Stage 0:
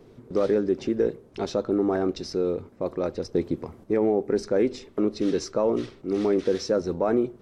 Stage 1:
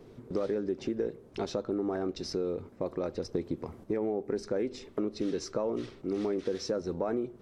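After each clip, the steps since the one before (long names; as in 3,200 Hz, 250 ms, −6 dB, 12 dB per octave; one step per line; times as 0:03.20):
downward compressor 3 to 1, threshold −29 dBFS, peak gain reduction 9 dB
level −1 dB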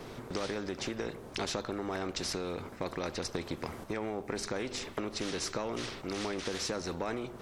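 every bin compressed towards the loudest bin 2 to 1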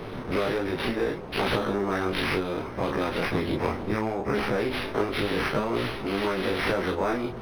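every bin's largest magnitude spread in time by 60 ms
multi-voice chorus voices 2, 0.68 Hz, delay 18 ms, depth 3.7 ms
linearly interpolated sample-rate reduction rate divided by 6×
level +9 dB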